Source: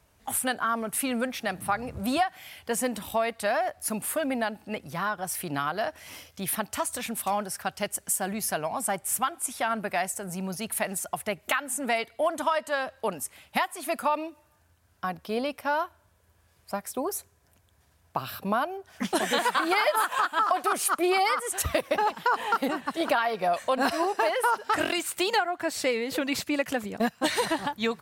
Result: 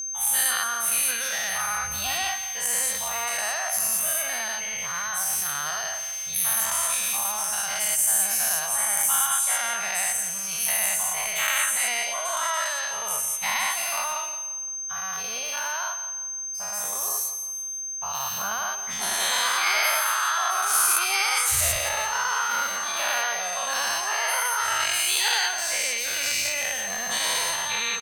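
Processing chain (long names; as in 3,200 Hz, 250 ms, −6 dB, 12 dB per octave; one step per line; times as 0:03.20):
every bin's largest magnitude spread in time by 240 ms
guitar amp tone stack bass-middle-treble 10-0-10
pitch shifter +0.5 semitones
steady tone 6,300 Hz −29 dBFS
on a send: repeating echo 171 ms, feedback 40%, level −11.5 dB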